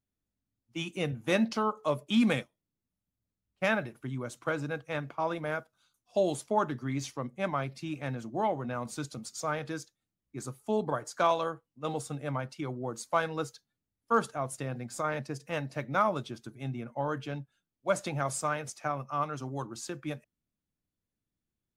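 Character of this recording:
background noise floor −89 dBFS
spectral slope −5.0 dB per octave

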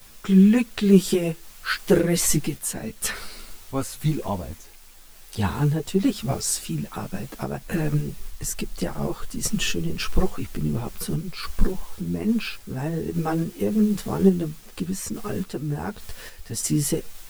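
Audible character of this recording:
a quantiser's noise floor 8 bits, dither triangular
sample-and-hold tremolo
a shimmering, thickened sound

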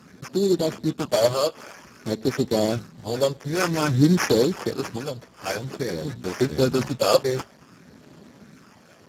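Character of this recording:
phaser sweep stages 12, 0.52 Hz, lowest notch 250–1,600 Hz
aliases and images of a low sample rate 3,900 Hz, jitter 0%
Speex

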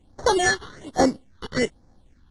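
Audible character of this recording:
aliases and images of a low sample rate 2,500 Hz, jitter 0%
phaser sweep stages 6, 1.2 Hz, lowest notch 590–2,900 Hz
AAC

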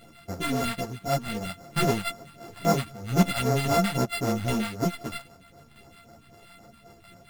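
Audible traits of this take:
a buzz of ramps at a fixed pitch in blocks of 64 samples
phaser sweep stages 2, 3.8 Hz, lowest notch 400–4,100 Hz
aliases and images of a low sample rate 6,200 Hz, jitter 0%
a shimmering, thickened sound

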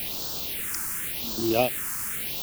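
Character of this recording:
tremolo saw down 2.9 Hz, depth 90%
a quantiser's noise floor 6 bits, dither triangular
phaser sweep stages 4, 0.89 Hz, lowest notch 580–2,100 Hz

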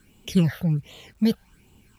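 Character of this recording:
phaser sweep stages 8, 1.3 Hz, lowest notch 300–1,700 Hz
a quantiser's noise floor 12 bits, dither none

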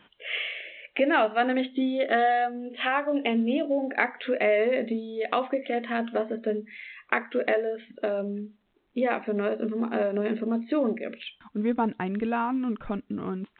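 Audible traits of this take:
A-law companding

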